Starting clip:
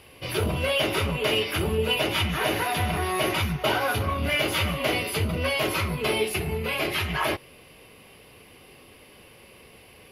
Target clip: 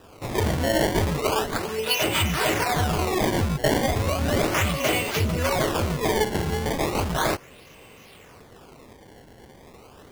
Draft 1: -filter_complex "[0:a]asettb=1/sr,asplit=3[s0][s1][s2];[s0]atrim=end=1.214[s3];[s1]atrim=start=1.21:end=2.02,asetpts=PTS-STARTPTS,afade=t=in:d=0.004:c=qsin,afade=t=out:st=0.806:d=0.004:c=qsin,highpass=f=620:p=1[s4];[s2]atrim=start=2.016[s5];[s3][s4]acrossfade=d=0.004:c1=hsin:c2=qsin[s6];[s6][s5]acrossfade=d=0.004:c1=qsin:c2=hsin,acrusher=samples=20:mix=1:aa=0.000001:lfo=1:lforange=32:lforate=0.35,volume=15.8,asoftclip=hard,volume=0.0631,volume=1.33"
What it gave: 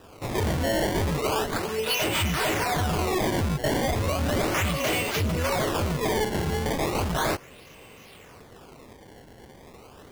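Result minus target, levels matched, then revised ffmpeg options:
overload inside the chain: distortion +15 dB
-filter_complex "[0:a]asettb=1/sr,asplit=3[s0][s1][s2];[s0]atrim=end=1.214[s3];[s1]atrim=start=1.21:end=2.02,asetpts=PTS-STARTPTS,afade=t=in:d=0.004:c=qsin,afade=t=out:st=0.806:d=0.004:c=qsin,highpass=f=620:p=1[s4];[s2]atrim=start=2.016[s5];[s3][s4]acrossfade=d=0.004:c1=hsin:c2=qsin[s6];[s6][s5]acrossfade=d=0.004:c1=qsin:c2=hsin,acrusher=samples=20:mix=1:aa=0.000001:lfo=1:lforange=32:lforate=0.35,volume=6.68,asoftclip=hard,volume=0.15,volume=1.33"

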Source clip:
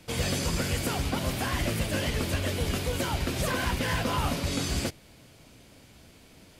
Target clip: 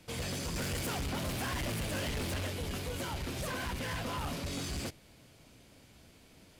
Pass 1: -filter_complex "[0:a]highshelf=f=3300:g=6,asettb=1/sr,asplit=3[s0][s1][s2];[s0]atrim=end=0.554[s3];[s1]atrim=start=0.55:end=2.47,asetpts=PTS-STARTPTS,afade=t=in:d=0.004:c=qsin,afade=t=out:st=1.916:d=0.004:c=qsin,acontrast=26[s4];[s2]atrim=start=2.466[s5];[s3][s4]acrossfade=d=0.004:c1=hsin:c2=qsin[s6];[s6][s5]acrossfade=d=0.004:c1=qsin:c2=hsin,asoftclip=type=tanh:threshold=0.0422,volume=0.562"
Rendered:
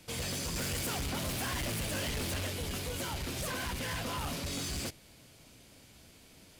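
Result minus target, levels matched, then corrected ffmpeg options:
8 kHz band +3.0 dB
-filter_complex "[0:a]asettb=1/sr,asplit=3[s0][s1][s2];[s0]atrim=end=0.554[s3];[s1]atrim=start=0.55:end=2.47,asetpts=PTS-STARTPTS,afade=t=in:d=0.004:c=qsin,afade=t=out:st=1.916:d=0.004:c=qsin,acontrast=26[s4];[s2]atrim=start=2.466[s5];[s3][s4]acrossfade=d=0.004:c1=hsin:c2=qsin[s6];[s6][s5]acrossfade=d=0.004:c1=qsin:c2=hsin,asoftclip=type=tanh:threshold=0.0422,volume=0.562"

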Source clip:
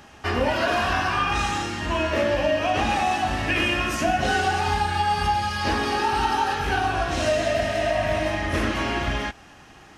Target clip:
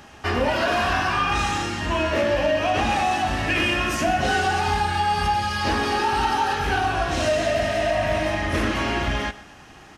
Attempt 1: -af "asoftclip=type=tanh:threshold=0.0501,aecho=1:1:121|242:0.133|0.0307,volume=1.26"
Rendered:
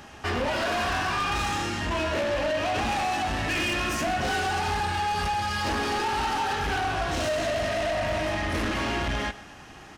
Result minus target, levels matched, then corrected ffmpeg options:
saturation: distortion +13 dB
-af "asoftclip=type=tanh:threshold=0.188,aecho=1:1:121|242:0.133|0.0307,volume=1.26"

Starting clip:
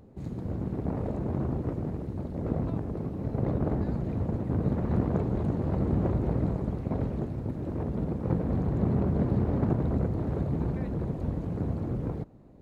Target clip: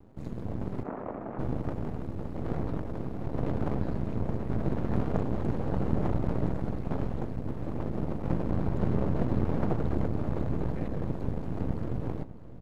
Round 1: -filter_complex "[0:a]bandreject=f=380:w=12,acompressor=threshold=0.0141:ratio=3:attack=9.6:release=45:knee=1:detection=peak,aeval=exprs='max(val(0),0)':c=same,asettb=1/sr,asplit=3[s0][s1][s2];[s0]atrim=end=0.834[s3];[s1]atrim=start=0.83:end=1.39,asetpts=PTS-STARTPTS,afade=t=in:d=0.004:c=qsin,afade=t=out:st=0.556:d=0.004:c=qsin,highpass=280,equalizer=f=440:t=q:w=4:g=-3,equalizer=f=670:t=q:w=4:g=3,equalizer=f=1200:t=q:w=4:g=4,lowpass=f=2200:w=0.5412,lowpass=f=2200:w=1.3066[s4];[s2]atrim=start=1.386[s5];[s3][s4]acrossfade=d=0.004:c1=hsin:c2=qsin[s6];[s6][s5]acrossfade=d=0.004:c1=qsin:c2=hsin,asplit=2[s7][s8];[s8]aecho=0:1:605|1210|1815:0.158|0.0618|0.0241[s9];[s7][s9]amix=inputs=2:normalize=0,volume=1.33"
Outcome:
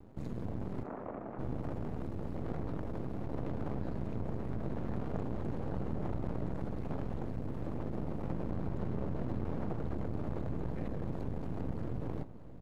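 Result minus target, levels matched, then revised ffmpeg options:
compression: peak gain reduction +12.5 dB
-filter_complex "[0:a]bandreject=f=380:w=12,aeval=exprs='max(val(0),0)':c=same,asettb=1/sr,asplit=3[s0][s1][s2];[s0]atrim=end=0.834[s3];[s1]atrim=start=0.83:end=1.39,asetpts=PTS-STARTPTS,afade=t=in:d=0.004:c=qsin,afade=t=out:st=0.556:d=0.004:c=qsin,highpass=280,equalizer=f=440:t=q:w=4:g=-3,equalizer=f=670:t=q:w=4:g=3,equalizer=f=1200:t=q:w=4:g=4,lowpass=f=2200:w=0.5412,lowpass=f=2200:w=1.3066[s4];[s2]atrim=start=1.386[s5];[s3][s4]acrossfade=d=0.004:c1=hsin:c2=qsin[s6];[s6][s5]acrossfade=d=0.004:c1=qsin:c2=hsin,asplit=2[s7][s8];[s8]aecho=0:1:605|1210|1815:0.158|0.0618|0.0241[s9];[s7][s9]amix=inputs=2:normalize=0,volume=1.33"

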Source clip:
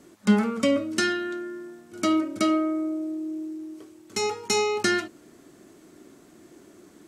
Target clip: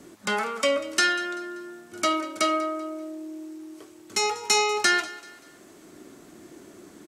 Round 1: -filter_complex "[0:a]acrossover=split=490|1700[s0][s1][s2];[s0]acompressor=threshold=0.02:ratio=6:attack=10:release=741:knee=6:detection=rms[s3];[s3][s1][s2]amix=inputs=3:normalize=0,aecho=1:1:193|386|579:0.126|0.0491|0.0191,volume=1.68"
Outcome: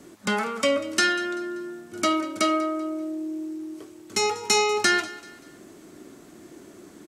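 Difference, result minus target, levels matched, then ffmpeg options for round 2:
compression: peak gain reduction -9.5 dB
-filter_complex "[0:a]acrossover=split=490|1700[s0][s1][s2];[s0]acompressor=threshold=0.00531:ratio=6:attack=10:release=741:knee=6:detection=rms[s3];[s3][s1][s2]amix=inputs=3:normalize=0,aecho=1:1:193|386|579:0.126|0.0491|0.0191,volume=1.68"

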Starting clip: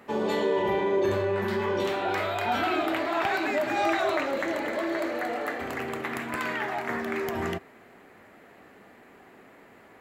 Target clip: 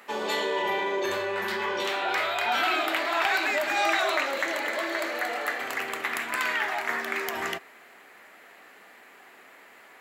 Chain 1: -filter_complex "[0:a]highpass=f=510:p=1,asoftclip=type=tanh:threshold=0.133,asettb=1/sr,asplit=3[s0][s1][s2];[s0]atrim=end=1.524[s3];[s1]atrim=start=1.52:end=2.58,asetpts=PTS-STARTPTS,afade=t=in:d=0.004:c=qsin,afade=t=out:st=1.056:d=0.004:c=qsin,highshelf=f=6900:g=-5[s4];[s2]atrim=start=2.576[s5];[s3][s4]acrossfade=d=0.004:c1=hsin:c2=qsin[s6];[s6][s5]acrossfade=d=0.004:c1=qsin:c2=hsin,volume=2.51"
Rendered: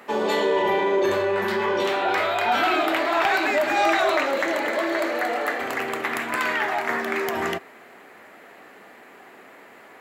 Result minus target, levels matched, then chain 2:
500 Hz band +3.5 dB
-filter_complex "[0:a]highpass=f=1800:p=1,asoftclip=type=tanh:threshold=0.133,asettb=1/sr,asplit=3[s0][s1][s2];[s0]atrim=end=1.524[s3];[s1]atrim=start=1.52:end=2.58,asetpts=PTS-STARTPTS,afade=t=in:d=0.004:c=qsin,afade=t=out:st=1.056:d=0.004:c=qsin,highshelf=f=6900:g=-5[s4];[s2]atrim=start=2.576[s5];[s3][s4]acrossfade=d=0.004:c1=hsin:c2=qsin[s6];[s6][s5]acrossfade=d=0.004:c1=qsin:c2=hsin,volume=2.51"

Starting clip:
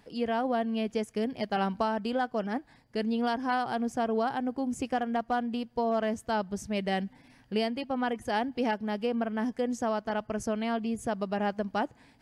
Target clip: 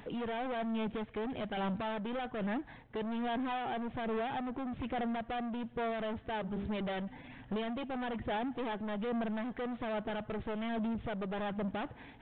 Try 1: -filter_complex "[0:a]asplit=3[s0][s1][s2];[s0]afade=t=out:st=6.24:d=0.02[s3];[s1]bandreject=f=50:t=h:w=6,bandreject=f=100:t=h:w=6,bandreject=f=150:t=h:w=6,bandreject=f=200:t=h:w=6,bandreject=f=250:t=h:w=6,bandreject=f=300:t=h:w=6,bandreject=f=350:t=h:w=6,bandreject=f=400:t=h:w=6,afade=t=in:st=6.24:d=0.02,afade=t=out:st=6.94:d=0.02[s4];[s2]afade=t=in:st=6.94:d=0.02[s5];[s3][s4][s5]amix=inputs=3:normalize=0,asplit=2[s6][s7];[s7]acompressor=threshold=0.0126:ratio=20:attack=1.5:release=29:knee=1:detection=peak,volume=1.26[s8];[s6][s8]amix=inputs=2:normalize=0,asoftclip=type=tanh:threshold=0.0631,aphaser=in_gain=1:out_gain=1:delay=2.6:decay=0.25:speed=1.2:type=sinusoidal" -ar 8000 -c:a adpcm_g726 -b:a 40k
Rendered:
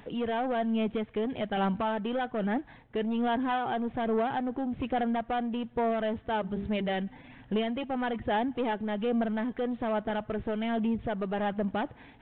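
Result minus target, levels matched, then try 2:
saturation: distortion -8 dB
-filter_complex "[0:a]asplit=3[s0][s1][s2];[s0]afade=t=out:st=6.24:d=0.02[s3];[s1]bandreject=f=50:t=h:w=6,bandreject=f=100:t=h:w=6,bandreject=f=150:t=h:w=6,bandreject=f=200:t=h:w=6,bandreject=f=250:t=h:w=6,bandreject=f=300:t=h:w=6,bandreject=f=350:t=h:w=6,bandreject=f=400:t=h:w=6,afade=t=in:st=6.24:d=0.02,afade=t=out:st=6.94:d=0.02[s4];[s2]afade=t=in:st=6.94:d=0.02[s5];[s3][s4][s5]amix=inputs=3:normalize=0,asplit=2[s6][s7];[s7]acompressor=threshold=0.0126:ratio=20:attack=1.5:release=29:knee=1:detection=peak,volume=1.26[s8];[s6][s8]amix=inputs=2:normalize=0,asoftclip=type=tanh:threshold=0.0188,aphaser=in_gain=1:out_gain=1:delay=2.6:decay=0.25:speed=1.2:type=sinusoidal" -ar 8000 -c:a adpcm_g726 -b:a 40k

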